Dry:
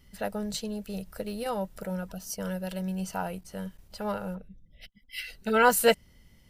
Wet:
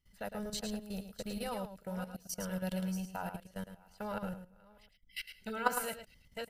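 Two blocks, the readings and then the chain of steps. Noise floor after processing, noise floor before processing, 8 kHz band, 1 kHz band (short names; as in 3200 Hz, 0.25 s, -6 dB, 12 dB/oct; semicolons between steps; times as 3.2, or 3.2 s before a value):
-66 dBFS, -59 dBFS, -8.5 dB, -9.5 dB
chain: reverse delay 0.439 s, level -10 dB; bell 360 Hz -5 dB 1.8 oct; level quantiser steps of 19 dB; echo 0.108 s -6.5 dB; upward expander 1.5:1, over -46 dBFS; gain +3.5 dB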